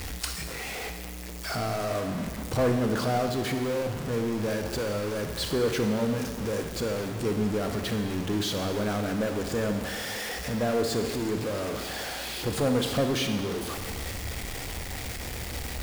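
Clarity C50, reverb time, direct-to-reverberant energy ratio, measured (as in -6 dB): 6.0 dB, 1.7 s, 5.0 dB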